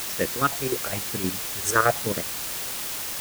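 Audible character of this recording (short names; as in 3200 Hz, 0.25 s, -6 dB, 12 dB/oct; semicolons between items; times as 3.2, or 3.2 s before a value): phasing stages 6, 1 Hz, lowest notch 200–1100 Hz; chopped level 9.7 Hz, depth 65%, duty 55%; a quantiser's noise floor 6-bit, dither triangular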